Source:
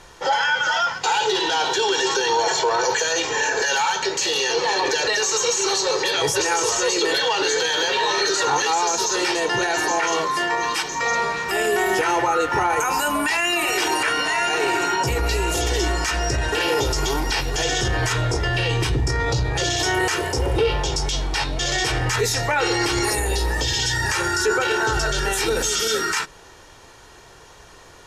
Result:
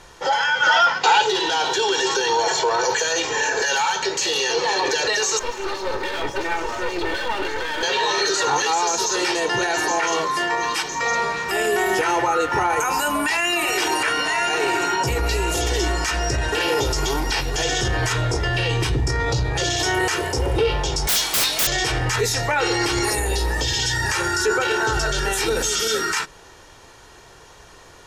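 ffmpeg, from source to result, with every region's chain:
-filter_complex "[0:a]asettb=1/sr,asplit=3[a][b][c];[a]atrim=end=0.624[d];[b]atrim=start=0.62:end=1.22,asetpts=PTS-STARTPTS,afade=t=in:d=0.004:c=qsin,afade=t=out:st=0.596:d=0.004:c=qsin,highpass=190,lowpass=5k,acontrast=46[e];[c]atrim=start=1.216[f];[d][e]acrossfade=d=0.004:c1=hsin:c2=qsin[g];[g][f]acrossfade=d=0.004:c1=qsin:c2=hsin,asettb=1/sr,asplit=3[h][i][j];[h]atrim=end=5.394[k];[i]atrim=start=5.39:end=7.83,asetpts=PTS-STARTPTS,afade=t=in:d=0.004:c=qsin,afade=t=out:st=2.436:d=0.004:c=qsin,lowpass=2.3k,aeval=exprs='clip(val(0),-1,0.0224)':c=same,aecho=1:1:3.3:0.48,atrim=end_sample=107604[l];[j]atrim=start=7.826[m];[k][l]acrossfade=d=0.004:c1=hsin:c2=qsin[n];[n][m]acrossfade=d=0.004:c1=qsin:c2=hsin,asettb=1/sr,asplit=3[o][p][q];[o]atrim=end=21.074[r];[p]atrim=start=21.07:end=21.67,asetpts=PTS-STARTPTS,afade=t=in:d=0.004:c=qsin,afade=t=out:st=0.596:d=0.004:c=qsin,aderivative,aeval=exprs='0.168*sin(PI/2*7.94*val(0)/0.168)':c=same[s];[q]atrim=start=21.666[t];[r][s]acrossfade=d=0.004:c1=hsin:c2=qsin[u];[u][t]acrossfade=d=0.004:c1=qsin:c2=hsin"

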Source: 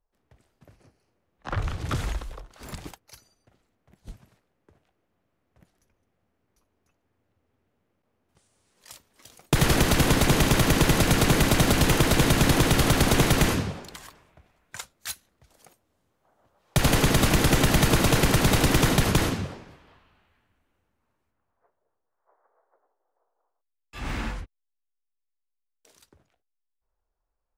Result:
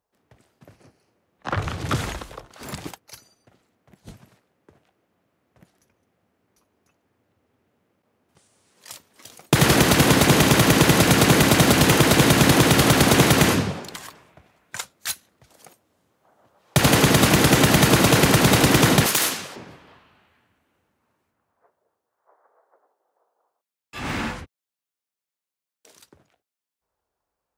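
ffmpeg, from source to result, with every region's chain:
-filter_complex "[0:a]asettb=1/sr,asplit=3[a][b][c];[a]atrim=end=19.064[d];[b]atrim=start=19.06:end=19.56,asetpts=PTS-STARTPTS,afade=t=in:d=0.004:c=qsin,afade=t=out:st=0.496:d=0.004:c=qsin,aeval=exprs='clip(val(0),-1,0.0944)':c=same,highpass=f=1.2k:p=1,highshelf=f=6.2k:g=11[e];[c]atrim=start=19.556[f];[d][e]acrossfade=d=0.004:c1=hsin:c2=qsin[g];[g][f]acrossfade=d=0.004:c1=qsin:c2=hsin,highpass=110,acontrast=60"

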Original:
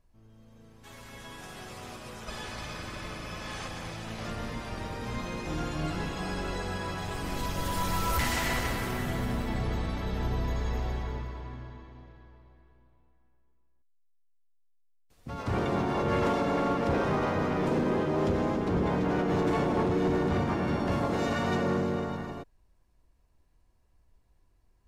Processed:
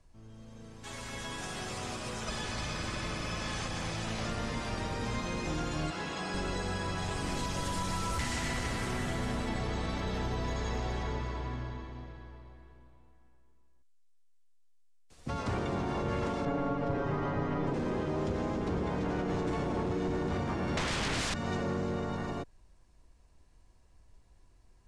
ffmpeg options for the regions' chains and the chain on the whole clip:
-filter_complex "[0:a]asettb=1/sr,asplit=3[a][b][c];[a]atrim=end=5.904[d];[b]atrim=start=5.9:end=6.34,asetpts=PTS-STARTPTS,afade=t=in:d=0.004:c=qsin,afade=t=out:st=0.436:d=0.004:c=qsin,highpass=f=490:p=1,highshelf=f=7.8k:g=-8[e];[c]atrim=start=6.336[f];[d][e]acrossfade=d=0.004:c1=hsin:c2=qsin[g];[g][f]acrossfade=d=0.004:c1=qsin:c2=hsin,asettb=1/sr,asplit=3[h][i][j];[h]atrim=end=16.454[k];[i]atrim=start=16.45:end=17.74,asetpts=PTS-STARTPTS,afade=t=in:d=0.004:c=qsin,afade=t=out:st=1.286:d=0.004:c=qsin,lowpass=f=1.8k:p=1,aecho=1:1:7.1:1,atrim=end_sample=56889[l];[j]atrim=start=17.736[m];[k][l]acrossfade=d=0.004:c1=hsin:c2=qsin[n];[n][m]acrossfade=d=0.004:c1=qsin:c2=hsin,asettb=1/sr,asplit=3[o][p][q];[o]atrim=end=20.774[r];[p]atrim=start=20.77:end=21.34,asetpts=PTS-STARTPTS,afade=t=in:d=0.004:c=qsin,afade=t=out:st=0.566:d=0.004:c=qsin,highpass=250,aeval=exprs='0.106*sin(PI/2*6.31*val(0)/0.106)':c=same[s];[q]atrim=start=21.336[t];[r][s]acrossfade=d=0.004:c1=hsin:c2=qsin[u];[u][t]acrossfade=d=0.004:c1=qsin:c2=hsin,lowpass=f=9k:w=0.5412,lowpass=f=9k:w=1.3066,highshelf=f=6.3k:g=8,acrossover=split=82|290[v][w][x];[v]acompressor=threshold=-45dB:ratio=4[y];[w]acompressor=threshold=-43dB:ratio=4[z];[x]acompressor=threshold=-41dB:ratio=4[aa];[y][z][aa]amix=inputs=3:normalize=0,volume=5dB"

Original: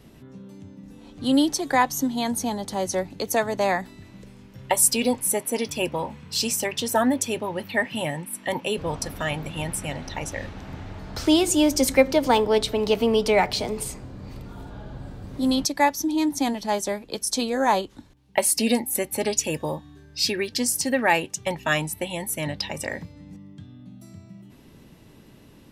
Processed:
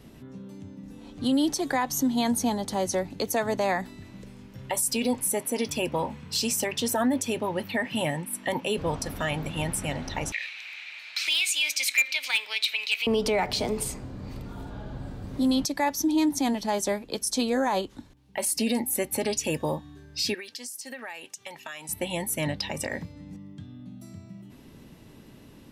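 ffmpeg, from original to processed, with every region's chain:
-filter_complex "[0:a]asettb=1/sr,asplit=3[a][b][c];[a]atrim=end=10.324[d];[b]atrim=start=10.32:end=13.07,asetpts=PTS-STARTPTS,afade=t=in:d=0.004:c=qsin,afade=t=out:st=2.746:d=0.004:c=qsin,highpass=f=2.4k:t=q:w=8.4,equalizer=f=4k:w=4.8:g=8,asoftclip=type=hard:threshold=-10.5dB[e];[c]atrim=start=13.066[f];[d][e]acrossfade=d=0.004:c1=hsin:c2=qsin[g];[g][f]acrossfade=d=0.004:c1=qsin:c2=hsin,asettb=1/sr,asplit=3[h][i][j];[h]atrim=end=20.344[k];[i]atrim=start=20.34:end=21.89,asetpts=PTS-STARTPTS,afade=t=in:d=0.004:c=qsin,afade=t=out:st=1.546:d=0.004:c=qsin,highpass=f=1.3k:p=1,acompressor=threshold=-35dB:ratio=8:attack=3.2:release=140:knee=1:detection=peak[l];[j]atrim=start=21.886[m];[k][l]acrossfade=d=0.004:c1=hsin:c2=qsin[n];[n][m]acrossfade=d=0.004:c1=qsin:c2=hsin,equalizer=f=250:w=4.9:g=2.5,alimiter=limit=-17dB:level=0:latency=1:release=67"

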